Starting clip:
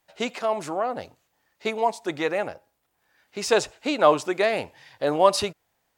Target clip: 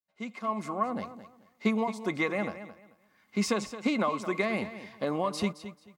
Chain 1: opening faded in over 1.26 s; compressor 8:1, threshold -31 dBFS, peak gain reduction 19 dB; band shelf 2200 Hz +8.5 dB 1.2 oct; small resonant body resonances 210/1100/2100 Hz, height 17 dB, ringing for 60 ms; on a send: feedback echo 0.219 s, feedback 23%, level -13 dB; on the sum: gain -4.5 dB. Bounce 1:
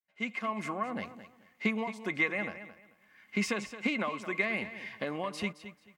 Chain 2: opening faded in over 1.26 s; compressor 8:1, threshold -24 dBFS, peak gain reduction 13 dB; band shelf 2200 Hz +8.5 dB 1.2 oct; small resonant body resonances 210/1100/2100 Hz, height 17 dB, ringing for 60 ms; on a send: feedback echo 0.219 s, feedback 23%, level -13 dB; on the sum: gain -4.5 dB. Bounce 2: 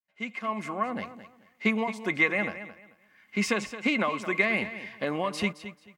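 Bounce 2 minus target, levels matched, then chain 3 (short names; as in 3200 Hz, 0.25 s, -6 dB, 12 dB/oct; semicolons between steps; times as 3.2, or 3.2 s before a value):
2000 Hz band +5.5 dB
opening faded in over 1.26 s; compressor 8:1, threshold -24 dBFS, peak gain reduction 13 dB; small resonant body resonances 210/1100/2100 Hz, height 17 dB, ringing for 60 ms; on a send: feedback echo 0.219 s, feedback 23%, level -13 dB; on the sum: gain -4.5 dB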